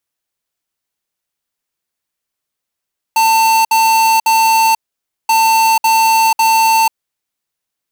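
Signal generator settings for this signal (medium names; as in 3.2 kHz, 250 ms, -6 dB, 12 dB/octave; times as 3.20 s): beep pattern square 895 Hz, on 0.49 s, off 0.06 s, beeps 3, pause 0.54 s, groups 2, -10.5 dBFS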